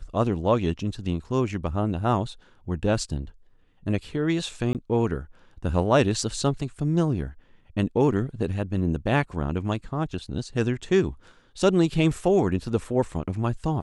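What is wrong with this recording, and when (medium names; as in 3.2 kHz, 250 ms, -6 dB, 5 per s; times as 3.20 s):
4.73–4.75 s: dropout 18 ms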